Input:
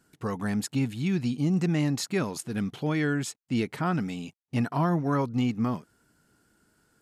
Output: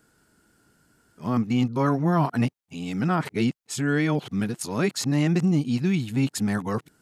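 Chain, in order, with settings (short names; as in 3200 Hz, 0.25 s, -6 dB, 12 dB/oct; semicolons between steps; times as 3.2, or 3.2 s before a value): whole clip reversed; gain +3.5 dB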